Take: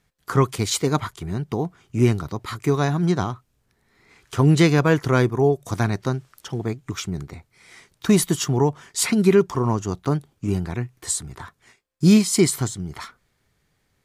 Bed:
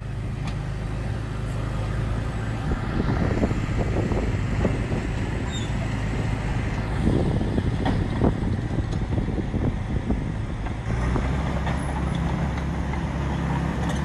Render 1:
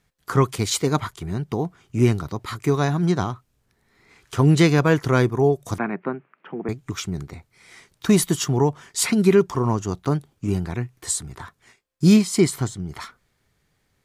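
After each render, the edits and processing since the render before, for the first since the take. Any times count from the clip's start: 5.78–6.69 s: Chebyshev band-pass 170–2500 Hz, order 4; 12.16–12.89 s: treble shelf 3.9 kHz -6.5 dB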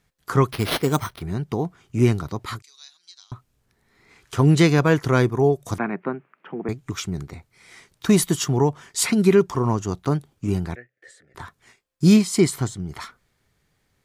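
0.51–1.22 s: careless resampling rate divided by 6×, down none, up hold; 2.62–3.32 s: ladder band-pass 4.9 kHz, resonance 60%; 10.75–11.35 s: two resonant band-passes 980 Hz, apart 1.7 oct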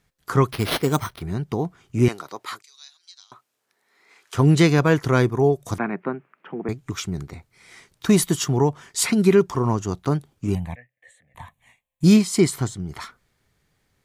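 2.08–4.35 s: high-pass 480 Hz; 10.55–12.04 s: static phaser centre 1.4 kHz, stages 6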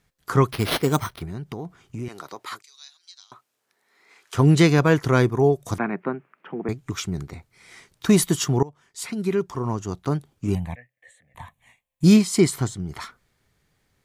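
1.24–2.52 s: compression 4:1, threshold -30 dBFS; 8.63–10.59 s: fade in, from -21.5 dB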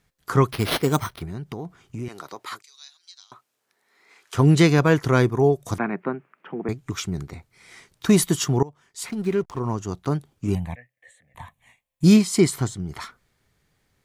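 9.07–9.60 s: hysteresis with a dead band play -36.5 dBFS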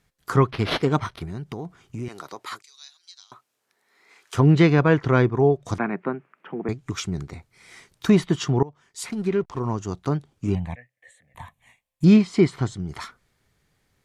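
low-pass that closes with the level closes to 3 kHz, closed at -16.5 dBFS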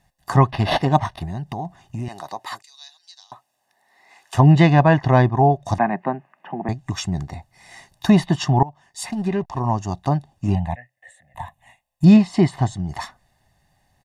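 high-order bell 590 Hz +9 dB 1.2 oct; comb 1.1 ms, depth 94%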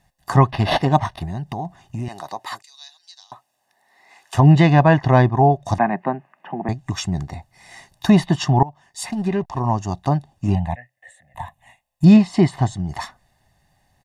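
trim +1 dB; peak limiter -3 dBFS, peak gain reduction 2 dB

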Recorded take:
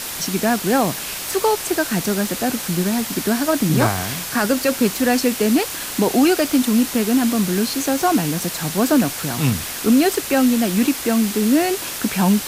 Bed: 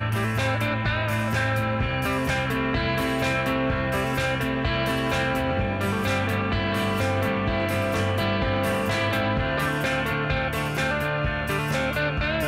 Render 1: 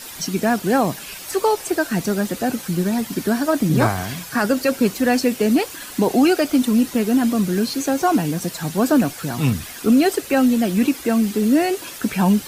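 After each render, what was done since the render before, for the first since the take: noise reduction 10 dB, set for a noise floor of -29 dBFS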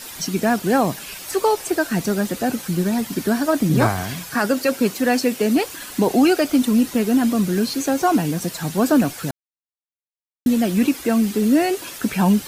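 4.34–5.57 s: high-pass 160 Hz 6 dB/octave; 9.31–10.46 s: mute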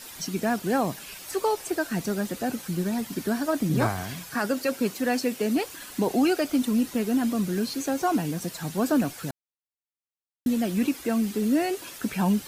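trim -7 dB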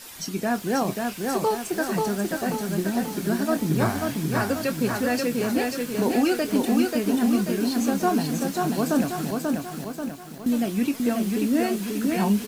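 doubling 25 ms -11 dB; bit-crushed delay 537 ms, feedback 55%, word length 8-bit, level -3 dB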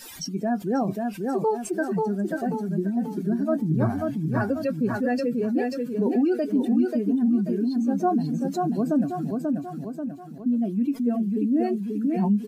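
spectral contrast enhancement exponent 1.8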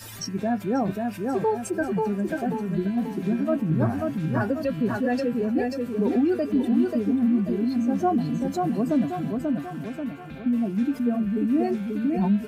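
add bed -20.5 dB

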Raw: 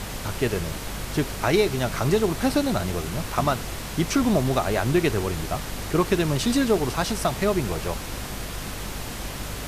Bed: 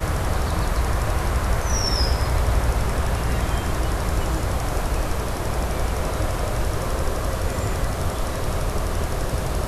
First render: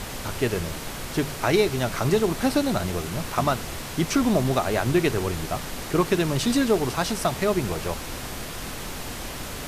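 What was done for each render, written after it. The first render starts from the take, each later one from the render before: de-hum 50 Hz, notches 4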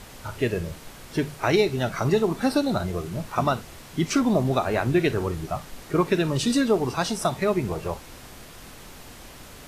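noise print and reduce 10 dB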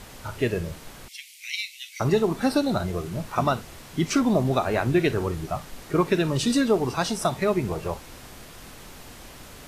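1.08–2.00 s: Chebyshev high-pass 2.1 kHz, order 6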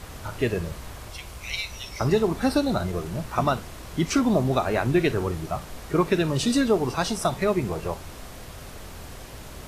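add bed -19 dB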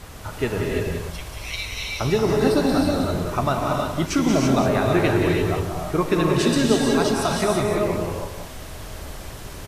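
on a send: delay 183 ms -7 dB; on the sum: gated-style reverb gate 360 ms rising, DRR -0.5 dB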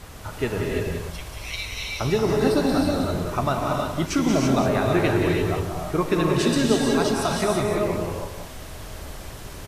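trim -1.5 dB

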